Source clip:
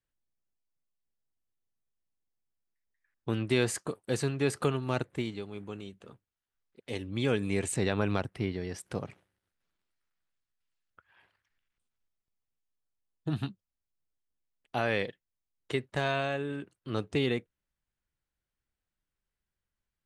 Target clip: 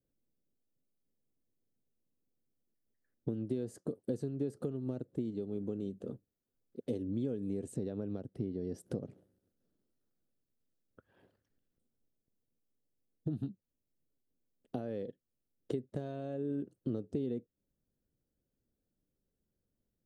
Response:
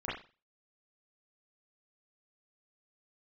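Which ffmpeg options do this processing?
-af "equalizer=f=2.3k:w=1.6:g=-12,acompressor=threshold=-43dB:ratio=16,equalizer=f=125:t=o:w=1:g=5,equalizer=f=250:t=o:w=1:g=11,equalizer=f=500:t=o:w=1:g=9,equalizer=f=1k:t=o:w=1:g=-10,equalizer=f=2k:t=o:w=1:g=-3,equalizer=f=4k:t=o:w=1:g=-4,equalizer=f=8k:t=o:w=1:g=-5,volume=1dB"

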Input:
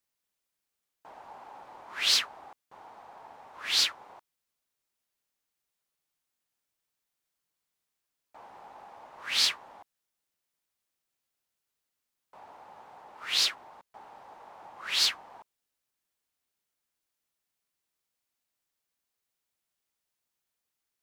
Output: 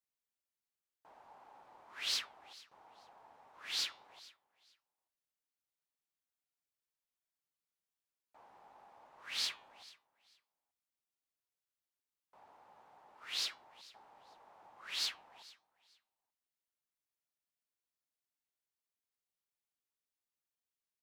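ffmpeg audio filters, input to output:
-af "aecho=1:1:442|884:0.0891|0.0196,flanger=delay=6.2:depth=3.1:regen=-87:speed=1.4:shape=sinusoidal,volume=-7dB"

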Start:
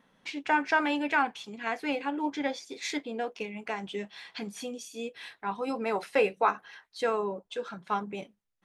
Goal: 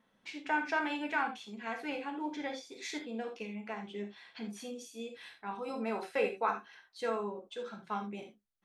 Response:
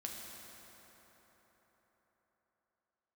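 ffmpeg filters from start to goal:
-filter_complex "[0:a]asettb=1/sr,asplit=3[a][b][c];[a]atrim=end=3.564[d];[b]atrim=start=3.56:end=4.53,asetpts=PTS-STARTPTS,afade=t=in:d=0.004:c=qsin,afade=t=out:st=0.966:d=0.004:c=qsin,highshelf=f=4.9k:g=-9.5[e];[c]atrim=start=4.526[f];[d][e]acrossfade=d=0.004:c1=hsin:c2=qsin[g];[g][f]acrossfade=d=0.004:c1=qsin:c2=hsin[h];[1:a]atrim=start_sample=2205,atrim=end_sample=3969[i];[h][i]afir=irnorm=-1:irlink=0,volume=-3dB"

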